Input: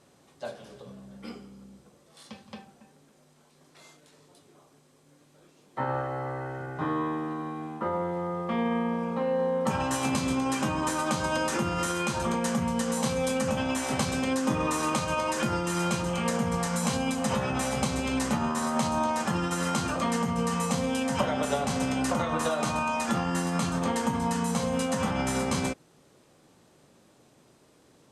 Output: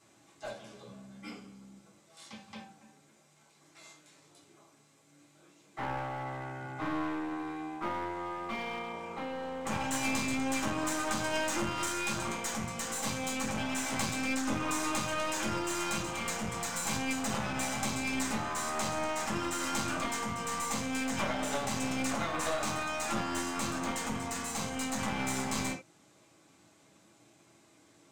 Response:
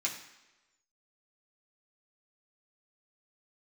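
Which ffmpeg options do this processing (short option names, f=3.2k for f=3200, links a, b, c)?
-filter_complex "[1:a]atrim=start_sample=2205,atrim=end_sample=3969[a];[0:a][a]afir=irnorm=-1:irlink=0,aeval=exprs='clip(val(0),-1,0.0224)':c=same,volume=-4dB"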